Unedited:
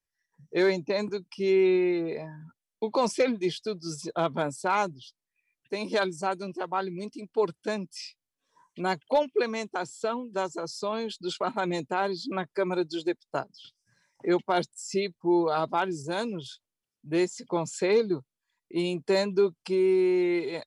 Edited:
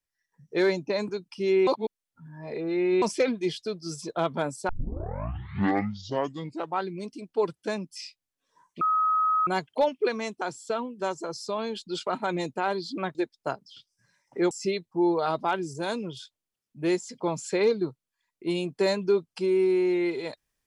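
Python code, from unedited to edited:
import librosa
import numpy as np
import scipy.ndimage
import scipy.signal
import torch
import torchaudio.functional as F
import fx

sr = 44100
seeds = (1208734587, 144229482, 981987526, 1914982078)

y = fx.edit(x, sr, fx.reverse_span(start_s=1.67, length_s=1.35),
    fx.tape_start(start_s=4.69, length_s=2.11),
    fx.insert_tone(at_s=8.81, length_s=0.66, hz=1270.0, db=-20.5),
    fx.cut(start_s=12.49, length_s=0.54),
    fx.cut(start_s=14.39, length_s=0.41), tone=tone)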